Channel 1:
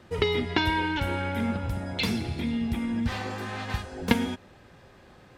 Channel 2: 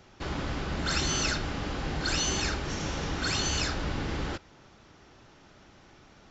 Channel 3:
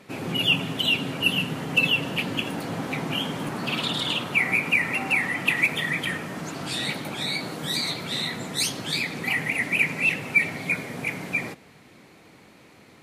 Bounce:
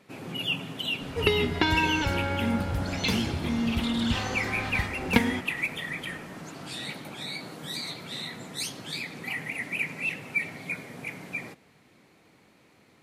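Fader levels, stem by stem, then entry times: +0.5 dB, -12.0 dB, -8.0 dB; 1.05 s, 0.80 s, 0.00 s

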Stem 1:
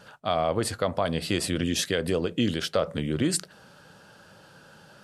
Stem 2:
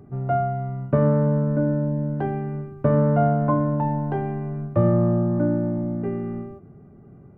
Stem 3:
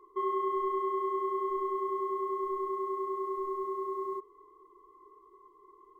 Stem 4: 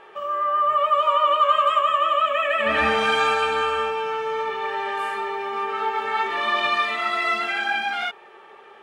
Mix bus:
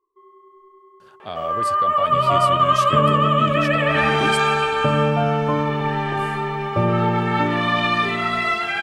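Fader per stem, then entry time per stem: -5.5 dB, -1.5 dB, -18.5 dB, +1.5 dB; 1.00 s, 2.00 s, 0.00 s, 1.20 s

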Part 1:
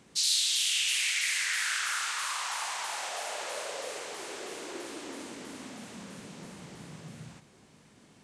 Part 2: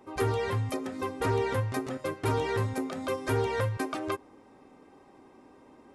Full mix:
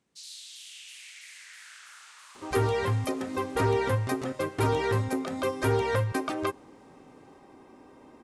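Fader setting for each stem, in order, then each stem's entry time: -18.0 dB, +2.5 dB; 0.00 s, 2.35 s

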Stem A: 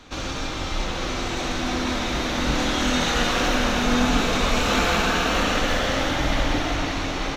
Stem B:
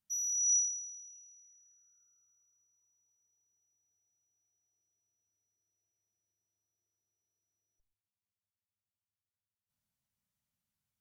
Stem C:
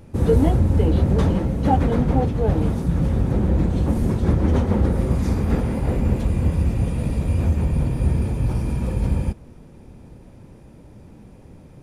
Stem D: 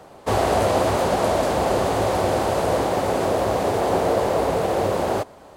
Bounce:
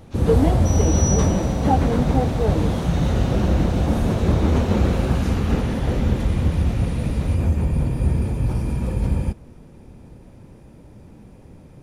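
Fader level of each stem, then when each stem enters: -14.5 dB, +1.0 dB, 0.0 dB, -11.5 dB; 0.00 s, 0.55 s, 0.00 s, 0.00 s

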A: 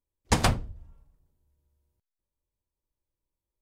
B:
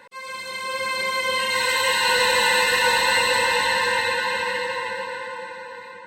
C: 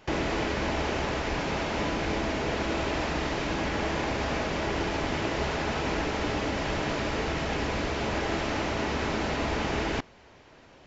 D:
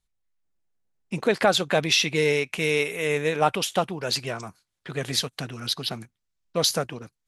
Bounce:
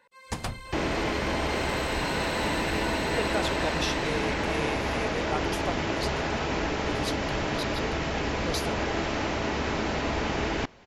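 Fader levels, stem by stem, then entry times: -10.0 dB, -15.5 dB, +0.5 dB, -11.5 dB; 0.00 s, 0.00 s, 0.65 s, 1.90 s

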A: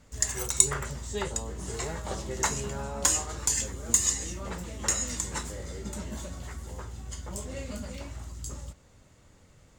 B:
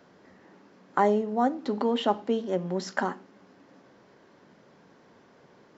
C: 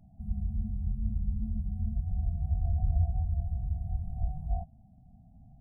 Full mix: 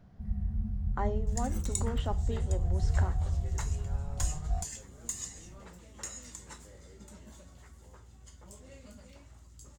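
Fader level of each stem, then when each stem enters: -14.0 dB, -12.0 dB, -0.5 dB; 1.15 s, 0.00 s, 0.00 s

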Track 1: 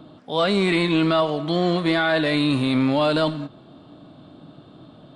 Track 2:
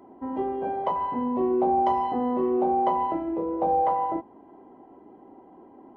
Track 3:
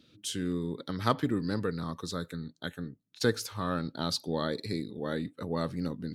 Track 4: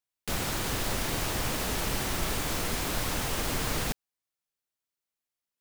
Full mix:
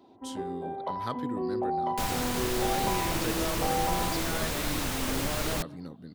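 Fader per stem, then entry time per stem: -17.0 dB, -7.5 dB, -8.5 dB, -1.0 dB; 2.30 s, 0.00 s, 0.00 s, 1.70 s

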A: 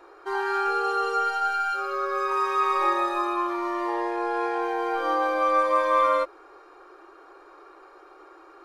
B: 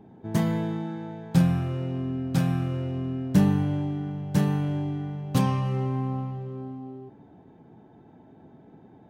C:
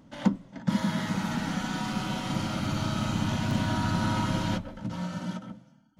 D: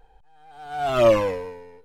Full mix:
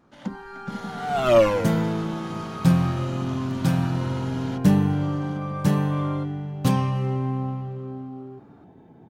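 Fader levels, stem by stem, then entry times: -14.0 dB, +2.0 dB, -7.5 dB, 0.0 dB; 0.00 s, 1.30 s, 0.00 s, 0.30 s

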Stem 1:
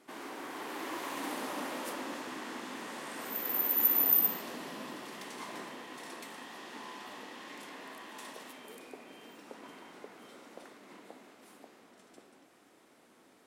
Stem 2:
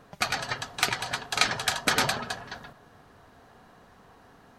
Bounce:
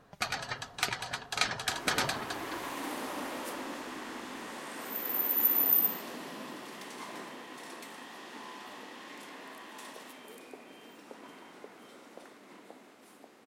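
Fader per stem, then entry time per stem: 0.0 dB, -6.0 dB; 1.60 s, 0.00 s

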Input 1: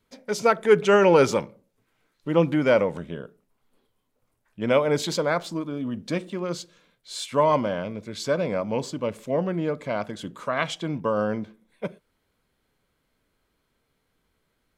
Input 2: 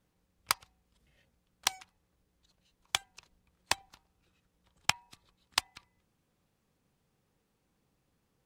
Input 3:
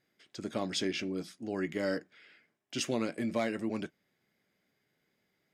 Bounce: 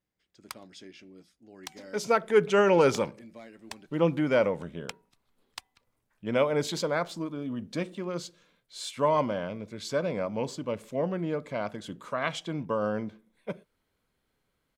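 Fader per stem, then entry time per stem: -4.5 dB, -12.5 dB, -15.5 dB; 1.65 s, 0.00 s, 0.00 s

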